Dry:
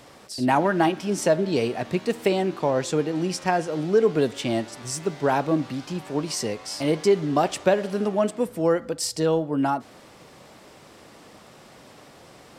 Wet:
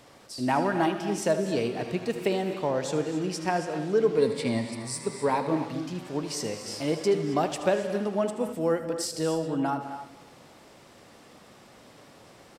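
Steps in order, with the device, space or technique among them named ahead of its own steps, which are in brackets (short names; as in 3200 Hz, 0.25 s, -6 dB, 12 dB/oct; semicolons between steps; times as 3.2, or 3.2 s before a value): compressed reverb return (on a send at -9.5 dB: reverb RT60 0.85 s, pre-delay 0.101 s + compressor, threshold -32 dBFS, peak gain reduction 19 dB); 4.16–5.48 on the sum: ripple EQ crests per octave 0.94, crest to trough 11 dB; echo 78 ms -13 dB; non-linear reverb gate 0.3 s rising, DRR 9 dB; gain -5 dB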